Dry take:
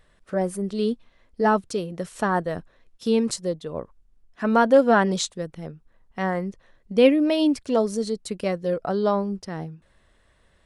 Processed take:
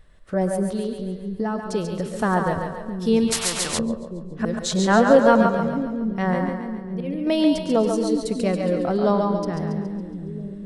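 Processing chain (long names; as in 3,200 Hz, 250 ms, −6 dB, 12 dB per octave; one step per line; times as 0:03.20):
low-shelf EQ 150 Hz +9.5 dB
0:00.76–0:01.73: downward compressor 4 to 1, threshold −26 dBFS, peak gain reduction 10 dB
0:04.45–0:05.46: reverse
0:06.49–0:07.27: volume swells 625 ms
echo with a time of its own for lows and highs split 370 Hz, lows 663 ms, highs 139 ms, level −5.5 dB
convolution reverb RT60 0.60 s, pre-delay 99 ms, DRR 10 dB
0:03.32–0:03.79: every bin compressed towards the loudest bin 4 to 1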